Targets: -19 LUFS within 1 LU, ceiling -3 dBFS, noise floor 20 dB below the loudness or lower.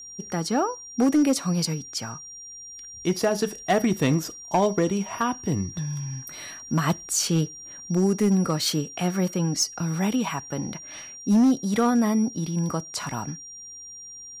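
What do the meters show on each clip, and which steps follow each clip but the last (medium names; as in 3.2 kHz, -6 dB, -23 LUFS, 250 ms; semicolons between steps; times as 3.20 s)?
clipped samples 0.8%; clipping level -14.5 dBFS; steady tone 5.7 kHz; tone level -39 dBFS; loudness -25.0 LUFS; peak level -14.5 dBFS; loudness target -19.0 LUFS
-> clip repair -14.5 dBFS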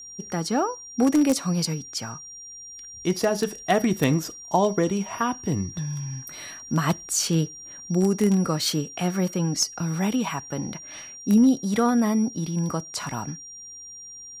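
clipped samples 0.0%; steady tone 5.7 kHz; tone level -39 dBFS
-> band-stop 5.7 kHz, Q 30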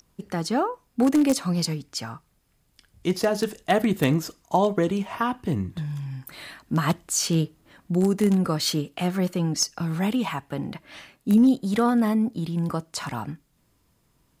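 steady tone not found; loudness -24.5 LUFS; peak level -5.5 dBFS; loudness target -19.0 LUFS
-> trim +5.5 dB; peak limiter -3 dBFS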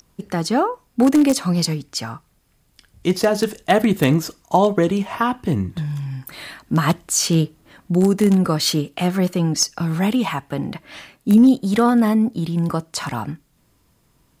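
loudness -19.0 LUFS; peak level -3.0 dBFS; noise floor -61 dBFS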